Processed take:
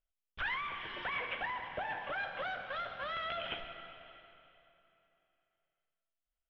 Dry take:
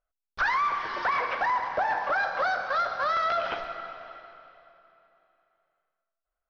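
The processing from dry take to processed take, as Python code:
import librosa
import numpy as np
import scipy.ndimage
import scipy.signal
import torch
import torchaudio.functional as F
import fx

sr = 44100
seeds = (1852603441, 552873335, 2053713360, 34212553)

y = fx.curve_eq(x, sr, hz=(140.0, 1200.0, 3200.0, 4500.0), db=(0, -14, 4, -21))
y = y * librosa.db_to_amplitude(-2.0)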